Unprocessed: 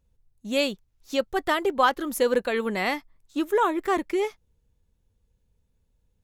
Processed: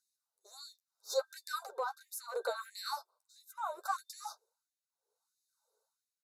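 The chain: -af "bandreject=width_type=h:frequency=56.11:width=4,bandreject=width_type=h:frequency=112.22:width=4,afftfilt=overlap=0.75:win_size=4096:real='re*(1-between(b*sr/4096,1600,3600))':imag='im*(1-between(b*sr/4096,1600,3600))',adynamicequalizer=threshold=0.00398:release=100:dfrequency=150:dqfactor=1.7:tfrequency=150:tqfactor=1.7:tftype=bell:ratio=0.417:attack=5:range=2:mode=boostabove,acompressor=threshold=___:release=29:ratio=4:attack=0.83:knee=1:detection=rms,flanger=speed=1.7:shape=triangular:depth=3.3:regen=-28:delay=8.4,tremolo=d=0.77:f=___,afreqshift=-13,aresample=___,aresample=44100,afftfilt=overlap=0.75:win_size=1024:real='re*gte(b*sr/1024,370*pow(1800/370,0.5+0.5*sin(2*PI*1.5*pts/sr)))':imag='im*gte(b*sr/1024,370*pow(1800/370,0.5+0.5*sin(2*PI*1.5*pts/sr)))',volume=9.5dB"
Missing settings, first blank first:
-31dB, 0.71, 32000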